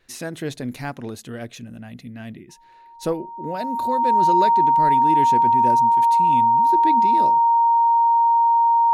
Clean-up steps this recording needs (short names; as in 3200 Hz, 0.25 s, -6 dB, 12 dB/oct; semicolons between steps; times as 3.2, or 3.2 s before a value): notch 930 Hz, Q 30